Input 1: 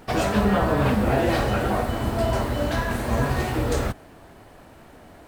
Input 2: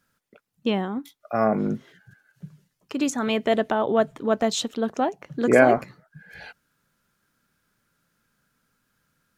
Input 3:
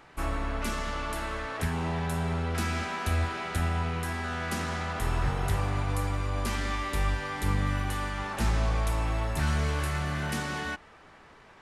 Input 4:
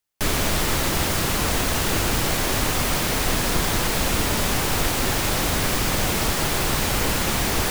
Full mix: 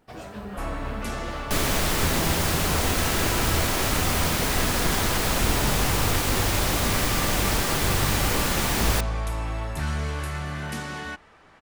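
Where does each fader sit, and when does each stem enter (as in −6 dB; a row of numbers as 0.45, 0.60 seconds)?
−16.5 dB, muted, −0.5 dB, −2.0 dB; 0.00 s, muted, 0.40 s, 1.30 s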